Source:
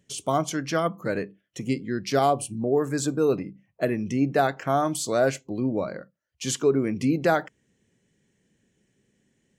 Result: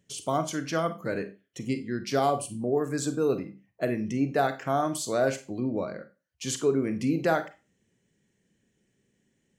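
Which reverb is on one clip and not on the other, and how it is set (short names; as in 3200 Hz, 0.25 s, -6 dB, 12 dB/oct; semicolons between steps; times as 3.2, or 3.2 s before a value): Schroeder reverb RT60 0.3 s, combs from 33 ms, DRR 10 dB; gain -3.5 dB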